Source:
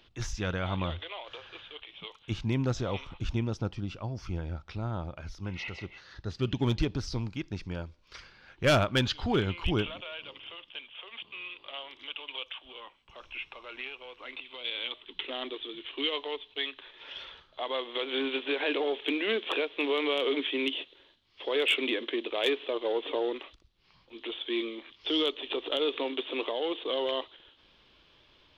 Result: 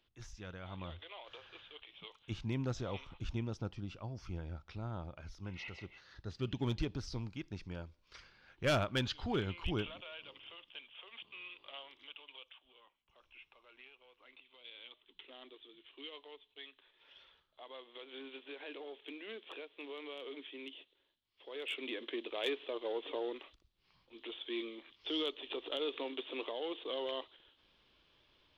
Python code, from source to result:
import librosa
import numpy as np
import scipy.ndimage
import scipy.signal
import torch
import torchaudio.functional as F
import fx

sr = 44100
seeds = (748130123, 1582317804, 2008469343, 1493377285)

y = fx.gain(x, sr, db=fx.line((0.61, -16.0), (1.27, -8.0), (11.75, -8.0), (12.66, -18.0), (21.47, -18.0), (22.11, -8.5)))